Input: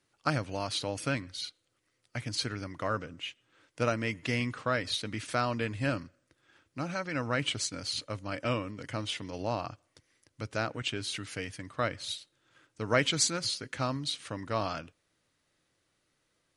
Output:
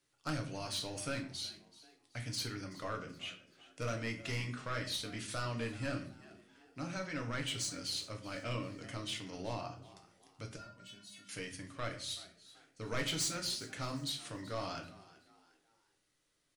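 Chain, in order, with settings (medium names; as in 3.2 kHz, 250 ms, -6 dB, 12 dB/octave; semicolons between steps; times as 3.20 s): treble shelf 2.8 kHz +7 dB; saturation -23.5 dBFS, distortion -10 dB; 10.56–11.29 s: feedback comb 200 Hz, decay 0.16 s, harmonics odd, mix 100%; frequency-shifting echo 379 ms, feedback 38%, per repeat +78 Hz, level -19 dB; simulated room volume 44 m³, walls mixed, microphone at 0.47 m; trim -8.5 dB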